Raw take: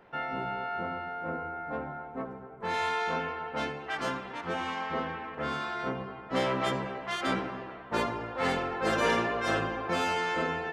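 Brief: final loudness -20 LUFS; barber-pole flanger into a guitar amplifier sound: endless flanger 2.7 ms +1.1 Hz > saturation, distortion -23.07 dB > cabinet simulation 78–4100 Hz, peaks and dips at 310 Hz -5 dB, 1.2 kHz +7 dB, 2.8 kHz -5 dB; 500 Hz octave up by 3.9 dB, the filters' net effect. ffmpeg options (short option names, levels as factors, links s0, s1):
-filter_complex "[0:a]equalizer=f=500:t=o:g=5,asplit=2[s0][s1];[s1]adelay=2.7,afreqshift=1.1[s2];[s0][s2]amix=inputs=2:normalize=1,asoftclip=threshold=0.106,highpass=78,equalizer=f=310:t=q:w=4:g=-5,equalizer=f=1200:t=q:w=4:g=7,equalizer=f=2800:t=q:w=4:g=-5,lowpass=f=4100:w=0.5412,lowpass=f=4100:w=1.3066,volume=4.47"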